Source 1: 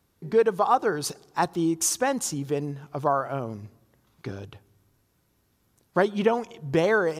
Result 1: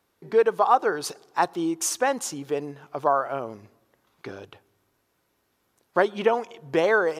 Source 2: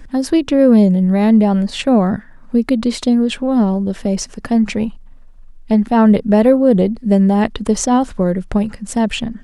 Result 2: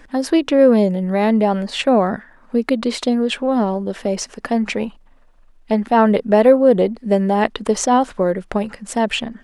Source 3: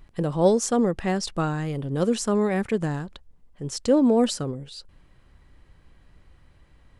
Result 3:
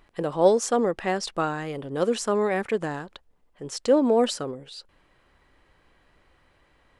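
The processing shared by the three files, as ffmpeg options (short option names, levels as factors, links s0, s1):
-af "bass=f=250:g=-14,treble=f=4000:g=-5,volume=1.33"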